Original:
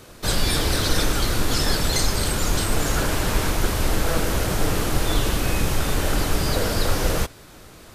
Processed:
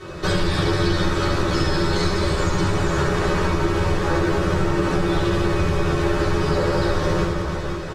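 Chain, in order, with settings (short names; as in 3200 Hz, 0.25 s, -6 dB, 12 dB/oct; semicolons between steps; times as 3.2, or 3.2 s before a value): LPF 5000 Hz 12 dB/oct; doubler 12 ms -2 dB; reverse bouncing-ball echo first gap 70 ms, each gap 1.4×, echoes 5; reverb RT60 0.25 s, pre-delay 3 ms, DRR -7.5 dB; compressor 3:1, threshold -20 dBFS, peak gain reduction 12.5 dB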